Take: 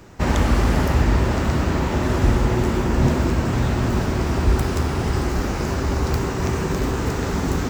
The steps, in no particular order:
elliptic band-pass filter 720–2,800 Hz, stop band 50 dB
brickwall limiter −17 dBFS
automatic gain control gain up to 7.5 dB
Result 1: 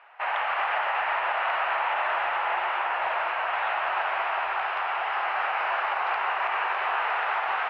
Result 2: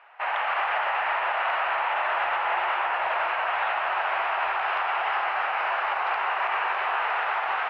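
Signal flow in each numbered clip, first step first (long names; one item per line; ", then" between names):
automatic gain control, then elliptic band-pass filter, then brickwall limiter
elliptic band-pass filter, then automatic gain control, then brickwall limiter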